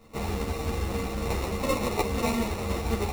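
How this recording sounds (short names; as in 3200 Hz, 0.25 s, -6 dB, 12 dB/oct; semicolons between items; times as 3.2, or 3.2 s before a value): aliases and images of a low sample rate 1600 Hz, jitter 0%; a shimmering, thickened sound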